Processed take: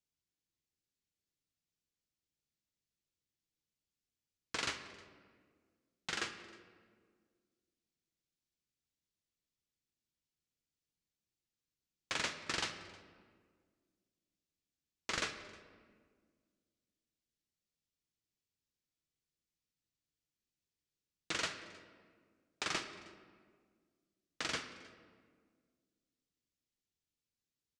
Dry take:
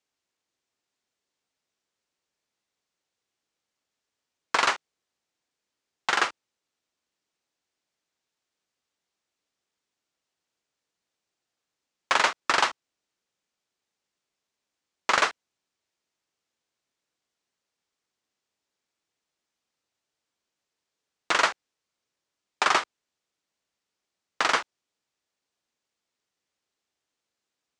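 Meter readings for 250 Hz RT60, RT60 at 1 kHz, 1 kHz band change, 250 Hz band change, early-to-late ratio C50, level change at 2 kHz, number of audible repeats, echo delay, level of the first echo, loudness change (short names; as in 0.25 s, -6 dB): 2.4 s, 1.6 s, -20.0 dB, -7.0 dB, 9.5 dB, -15.0 dB, 1, 0.313 s, -23.5 dB, -14.5 dB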